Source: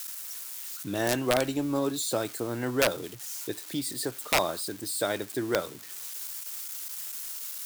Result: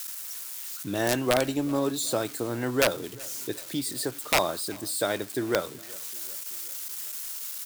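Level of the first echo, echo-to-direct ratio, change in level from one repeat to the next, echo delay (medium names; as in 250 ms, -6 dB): -23.5 dB, -22.0 dB, -5.0 dB, 380 ms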